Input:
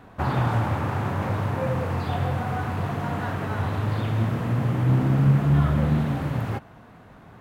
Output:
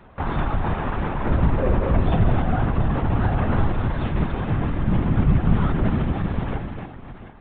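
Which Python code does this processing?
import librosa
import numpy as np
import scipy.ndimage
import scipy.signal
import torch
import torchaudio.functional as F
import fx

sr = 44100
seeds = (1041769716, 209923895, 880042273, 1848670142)

y = fx.low_shelf(x, sr, hz=380.0, db=8.5, at=(1.25, 3.73))
y = fx.echo_multitap(y, sr, ms=(278, 718), db=(-6.5, -12.5))
y = fx.lpc_vocoder(y, sr, seeds[0], excitation='whisper', order=16)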